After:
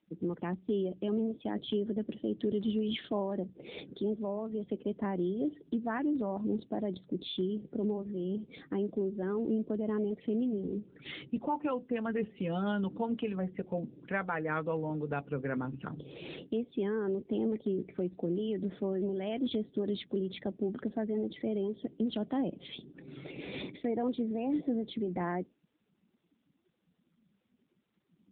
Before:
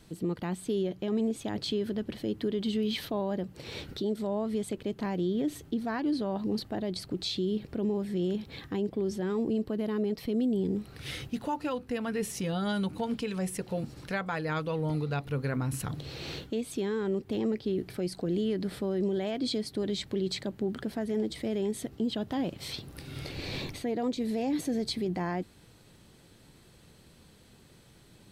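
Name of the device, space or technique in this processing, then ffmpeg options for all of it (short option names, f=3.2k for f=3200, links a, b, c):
mobile call with aggressive noise cancelling: -af "highpass=f=170:w=0.5412,highpass=f=170:w=1.3066,afftdn=nr=24:nf=-45" -ar 8000 -c:a libopencore_amrnb -b:a 7950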